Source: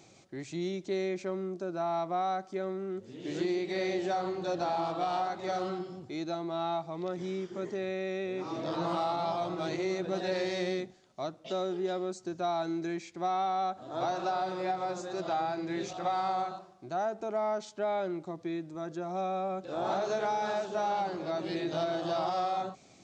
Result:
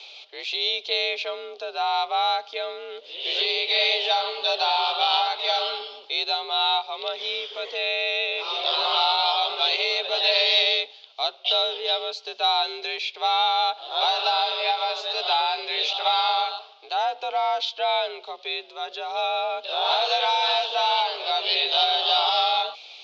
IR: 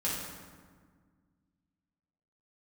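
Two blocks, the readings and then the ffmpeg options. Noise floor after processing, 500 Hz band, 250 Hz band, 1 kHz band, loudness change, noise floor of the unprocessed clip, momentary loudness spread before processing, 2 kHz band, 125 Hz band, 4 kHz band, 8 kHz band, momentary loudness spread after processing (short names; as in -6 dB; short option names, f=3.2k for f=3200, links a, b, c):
-47 dBFS, +3.0 dB, under -15 dB, +8.5 dB, +10.5 dB, -58 dBFS, 6 LU, +14.0 dB, under -40 dB, +24.5 dB, n/a, 11 LU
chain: -af "aexciter=amount=8:drive=9.2:freq=2.7k,highpass=f=470:t=q:w=0.5412,highpass=f=470:t=q:w=1.307,lowpass=f=3.5k:t=q:w=0.5176,lowpass=f=3.5k:t=q:w=0.7071,lowpass=f=3.5k:t=q:w=1.932,afreqshift=60,volume=7.5dB"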